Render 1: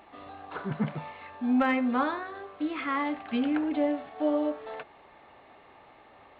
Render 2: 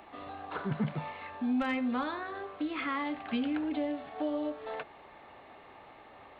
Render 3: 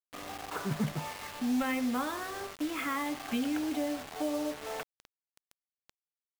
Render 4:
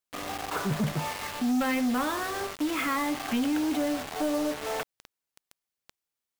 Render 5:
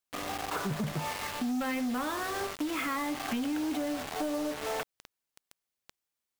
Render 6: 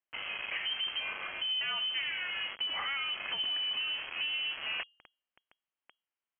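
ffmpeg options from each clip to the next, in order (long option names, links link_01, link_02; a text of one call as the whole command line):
ffmpeg -i in.wav -filter_complex "[0:a]acrossover=split=160|3000[link_01][link_02][link_03];[link_02]acompressor=threshold=-35dB:ratio=3[link_04];[link_01][link_04][link_03]amix=inputs=3:normalize=0,volume=1.5dB" out.wav
ffmpeg -i in.wav -af "acrusher=bits=6:mix=0:aa=0.000001" out.wav
ffmpeg -i in.wav -af "asoftclip=type=tanh:threshold=-29.5dB,volume=7.5dB" out.wav
ffmpeg -i in.wav -af "acompressor=threshold=-30dB:ratio=6" out.wav
ffmpeg -i in.wav -af "bandreject=frequency=234.2:width_type=h:width=4,bandreject=frequency=468.4:width_type=h:width=4,lowpass=frequency=2800:width_type=q:width=0.5098,lowpass=frequency=2800:width_type=q:width=0.6013,lowpass=frequency=2800:width_type=q:width=0.9,lowpass=frequency=2800:width_type=q:width=2.563,afreqshift=-3300,volume=-2dB" out.wav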